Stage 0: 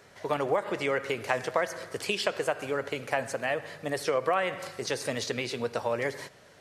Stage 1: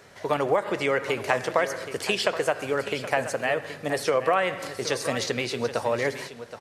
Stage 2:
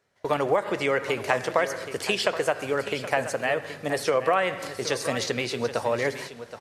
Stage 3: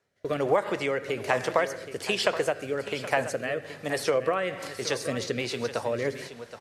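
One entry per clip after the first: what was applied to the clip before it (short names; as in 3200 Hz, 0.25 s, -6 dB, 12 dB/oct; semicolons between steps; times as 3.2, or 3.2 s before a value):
echo 0.773 s -12.5 dB; gain +4 dB
gate with hold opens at -32 dBFS
rotary speaker horn 1.2 Hz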